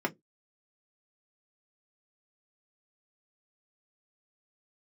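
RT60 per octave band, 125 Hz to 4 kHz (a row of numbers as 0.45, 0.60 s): 0.20, 0.20, 0.20, 0.10, 0.10, 0.10 s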